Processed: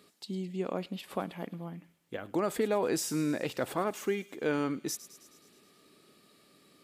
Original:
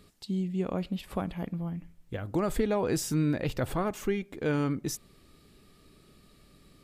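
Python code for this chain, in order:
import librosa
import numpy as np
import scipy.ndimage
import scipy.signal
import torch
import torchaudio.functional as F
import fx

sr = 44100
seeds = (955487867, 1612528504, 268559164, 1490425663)

p1 = scipy.signal.sosfilt(scipy.signal.butter(2, 260.0, 'highpass', fs=sr, output='sos'), x)
y = p1 + fx.echo_wet_highpass(p1, sr, ms=106, feedback_pct=63, hz=3200.0, wet_db=-13.5, dry=0)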